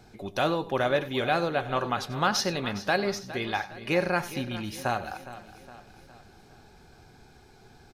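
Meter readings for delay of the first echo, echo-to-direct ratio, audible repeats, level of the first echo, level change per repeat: 93 ms, −12.0 dB, 6, −16.5 dB, repeats not evenly spaced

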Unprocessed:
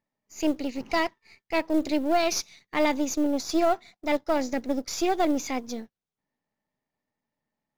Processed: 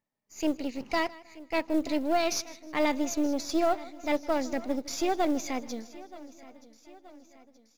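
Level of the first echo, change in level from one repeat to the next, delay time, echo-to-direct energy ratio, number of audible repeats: −20.5 dB, repeats not evenly spaced, 157 ms, −16.0 dB, 5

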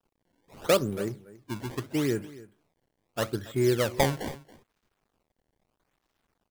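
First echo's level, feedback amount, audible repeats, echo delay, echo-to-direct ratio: −19.0 dB, repeats not evenly spaced, 1, 278 ms, −19.0 dB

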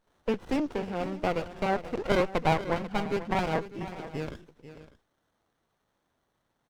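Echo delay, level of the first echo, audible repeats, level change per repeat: 490 ms, −13.5 dB, 2, repeats not evenly spaced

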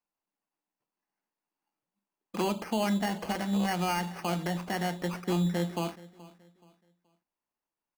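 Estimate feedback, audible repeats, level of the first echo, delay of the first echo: 33%, 2, −20.0 dB, 426 ms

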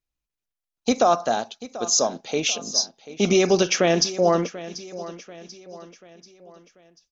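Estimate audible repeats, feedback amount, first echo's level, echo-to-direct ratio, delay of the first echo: 3, 46%, −16.0 dB, −15.0 dB, 738 ms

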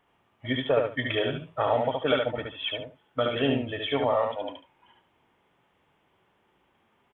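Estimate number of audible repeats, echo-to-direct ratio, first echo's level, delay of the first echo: 2, −3.5 dB, −3.5 dB, 72 ms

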